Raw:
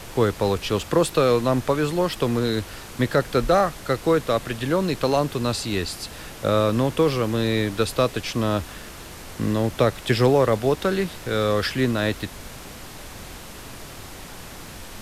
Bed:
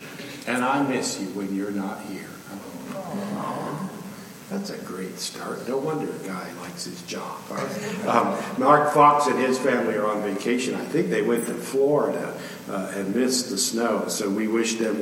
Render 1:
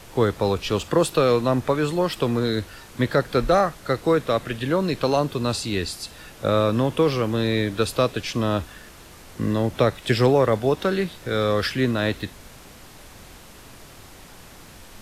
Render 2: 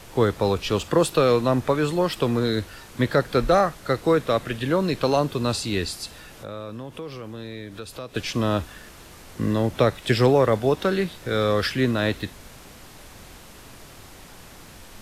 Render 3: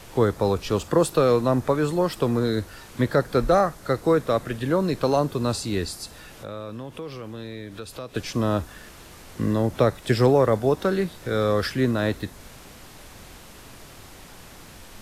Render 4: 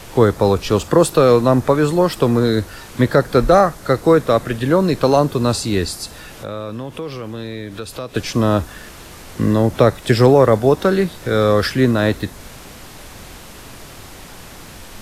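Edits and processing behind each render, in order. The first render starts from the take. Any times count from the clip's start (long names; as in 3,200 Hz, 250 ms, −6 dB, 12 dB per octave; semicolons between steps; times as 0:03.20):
noise reduction from a noise print 6 dB
0:06.17–0:08.15: downward compressor 2.5 to 1, threshold −39 dBFS
dynamic equaliser 2,900 Hz, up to −7 dB, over −44 dBFS, Q 1.1
level +7.5 dB; brickwall limiter −1 dBFS, peak gain reduction 1 dB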